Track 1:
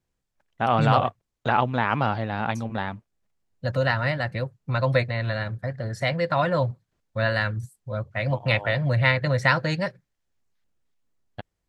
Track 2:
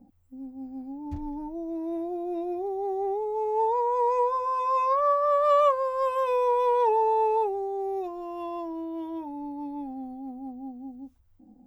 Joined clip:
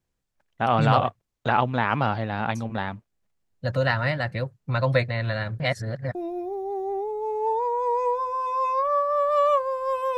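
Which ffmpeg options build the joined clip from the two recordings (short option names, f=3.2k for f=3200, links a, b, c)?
-filter_complex "[0:a]apad=whole_dur=10.17,atrim=end=10.17,asplit=2[a][b];[a]atrim=end=5.602[c];[b]atrim=start=5.598:end=6.152,asetpts=PTS-STARTPTS,areverse[d];[1:a]atrim=start=2.278:end=6.3[e];[c][d]acrossfade=d=0.004:c1=hsin:c2=hsin[f];[f][e]acrossfade=d=0.004:c1=hsin:c2=hsin"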